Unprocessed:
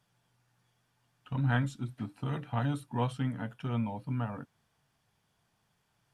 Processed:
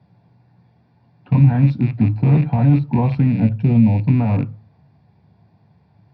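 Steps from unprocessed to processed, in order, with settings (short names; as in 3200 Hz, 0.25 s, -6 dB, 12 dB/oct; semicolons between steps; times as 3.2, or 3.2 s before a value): rattling part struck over -42 dBFS, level -32 dBFS; 3.32–4.04 bell 1100 Hz -10 dB 1.4 oct; limiter -27.5 dBFS, peak gain reduction 11 dB; air absorption 380 m; reverb RT60 0.35 s, pre-delay 3 ms, DRR 10.5 dB; gain +8.5 dB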